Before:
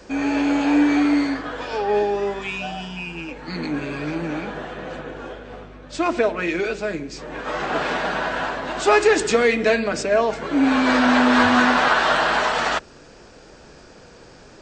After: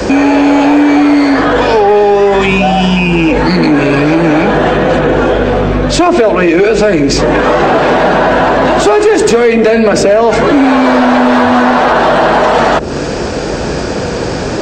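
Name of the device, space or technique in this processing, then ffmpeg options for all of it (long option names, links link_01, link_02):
mastering chain: -filter_complex "[0:a]highpass=48,equalizer=frequency=1300:width_type=o:width=0.77:gain=-2,acrossover=split=430|950[link_01][link_02][link_03];[link_01]acompressor=threshold=-33dB:ratio=4[link_04];[link_02]acompressor=threshold=-27dB:ratio=4[link_05];[link_03]acompressor=threshold=-34dB:ratio=4[link_06];[link_04][link_05][link_06]amix=inputs=3:normalize=0,acompressor=threshold=-29dB:ratio=2,asoftclip=type=tanh:threshold=-22.5dB,tiltshelf=frequency=1300:gain=3,asoftclip=type=hard:threshold=-23.5dB,alimiter=level_in=30dB:limit=-1dB:release=50:level=0:latency=1,volume=-1dB"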